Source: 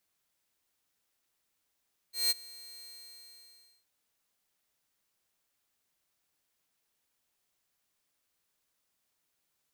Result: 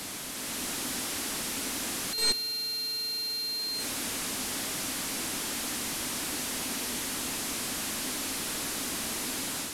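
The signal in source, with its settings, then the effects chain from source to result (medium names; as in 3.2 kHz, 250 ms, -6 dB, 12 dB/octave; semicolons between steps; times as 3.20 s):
ADSR saw 4.18 kHz, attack 176 ms, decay 25 ms, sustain -23 dB, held 0.70 s, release 1020 ms -21 dBFS
one-bit delta coder 64 kbps, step -31.5 dBFS; peaking EQ 260 Hz +12.5 dB 0.76 oct; level rider gain up to 5 dB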